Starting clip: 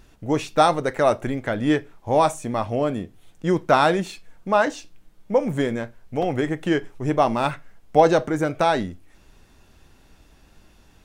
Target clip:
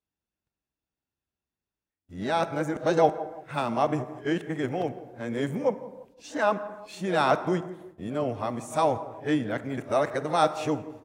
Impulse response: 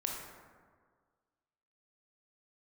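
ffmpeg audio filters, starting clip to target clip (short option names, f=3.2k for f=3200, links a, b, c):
-filter_complex "[0:a]areverse,asplit=2[a][b];[b]adelay=169,lowpass=f=1.2k:p=1,volume=-16dB,asplit=2[c][d];[d]adelay=169,lowpass=f=1.2k:p=1,volume=0.44,asplit=2[e][f];[f]adelay=169,lowpass=f=1.2k:p=1,volume=0.44,asplit=2[g][h];[h]adelay=169,lowpass=f=1.2k:p=1,volume=0.44[i];[a][c][e][g][i]amix=inputs=5:normalize=0,agate=range=-30dB:threshold=-42dB:ratio=16:detection=peak,highpass=69,asplit=2[j][k];[1:a]atrim=start_sample=2205,afade=t=out:st=0.41:d=0.01,atrim=end_sample=18522[l];[k][l]afir=irnorm=-1:irlink=0,volume=-11dB[m];[j][m]amix=inputs=2:normalize=0,volume=-8dB"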